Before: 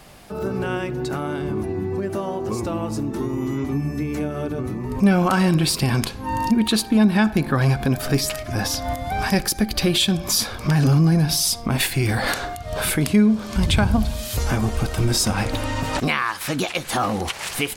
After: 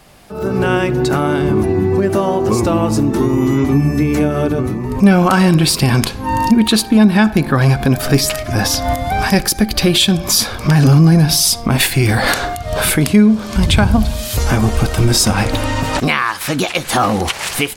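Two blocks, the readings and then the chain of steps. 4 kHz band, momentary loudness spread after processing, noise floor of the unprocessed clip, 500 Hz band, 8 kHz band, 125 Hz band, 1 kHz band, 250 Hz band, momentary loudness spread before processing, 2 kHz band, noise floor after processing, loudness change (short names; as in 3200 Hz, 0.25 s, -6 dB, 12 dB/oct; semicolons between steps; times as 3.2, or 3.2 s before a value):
+7.0 dB, 7 LU, -34 dBFS, +8.5 dB, +7.0 dB, +7.5 dB, +7.5 dB, +7.5 dB, 9 LU, +7.0 dB, -27 dBFS, +7.5 dB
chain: AGC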